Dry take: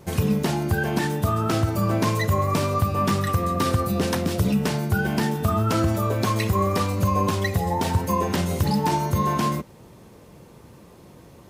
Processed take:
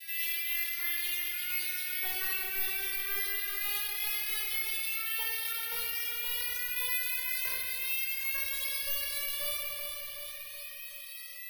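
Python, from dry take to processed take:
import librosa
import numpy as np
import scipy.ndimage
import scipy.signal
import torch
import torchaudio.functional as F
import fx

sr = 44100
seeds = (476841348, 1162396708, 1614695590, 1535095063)

p1 = fx.vocoder_glide(x, sr, note=64, semitones=12)
p2 = scipy.signal.sosfilt(scipy.signal.ellip(4, 1.0, 50, 2100.0, 'highpass', fs=sr, output='sos'), p1)
p3 = fx.high_shelf(p2, sr, hz=3200.0, db=9.5)
p4 = p3 + 0.52 * np.pad(p3, (int(6.0 * sr / 1000.0), 0))[:len(p3)]
p5 = fx.rider(p4, sr, range_db=10, speed_s=0.5)
p6 = p4 + F.gain(torch.from_numpy(p5), -2.0).numpy()
p7 = p6 * (1.0 - 0.67 / 2.0 + 0.67 / 2.0 * np.cos(2.0 * np.pi * 3.5 * (np.arange(len(p6)) / sr)))
p8 = 10.0 ** (-31.5 / 20.0) * (np.abs((p7 / 10.0 ** (-31.5 / 20.0) + 3.0) % 4.0 - 2.0) - 1.0)
p9 = fx.air_absorb(p8, sr, metres=180.0)
p10 = p9 + fx.echo_feedback(p9, sr, ms=374, feedback_pct=44, wet_db=-10.0, dry=0)
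p11 = fx.room_shoebox(p10, sr, seeds[0], volume_m3=770.0, walls='mixed', distance_m=5.0)
p12 = (np.kron(scipy.signal.resample_poly(p11, 1, 3), np.eye(3)[0]) * 3)[:len(p11)]
p13 = fx.env_flatten(p12, sr, amount_pct=50)
y = F.gain(torch.from_numpy(p13), -8.0).numpy()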